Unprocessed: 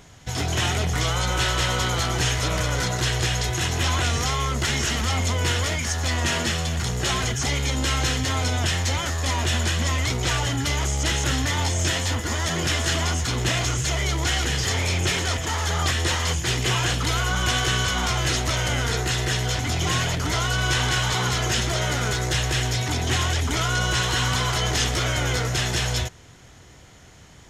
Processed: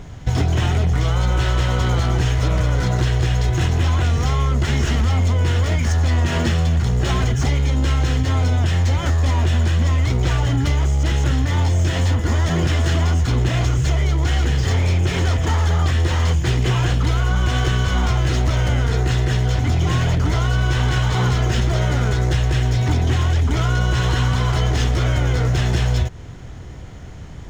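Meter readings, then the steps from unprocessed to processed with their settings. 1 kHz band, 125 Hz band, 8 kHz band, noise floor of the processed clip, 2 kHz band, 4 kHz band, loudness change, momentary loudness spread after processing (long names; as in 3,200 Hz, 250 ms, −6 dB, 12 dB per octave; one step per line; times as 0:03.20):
+0.5 dB, +8.5 dB, −7.5 dB, −33 dBFS, −2.0 dB, −4.5 dB, +4.0 dB, 1 LU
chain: running median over 3 samples
spectral tilt −2.5 dB per octave
downward compressor, threshold −21 dBFS, peak gain reduction 9 dB
level +6.5 dB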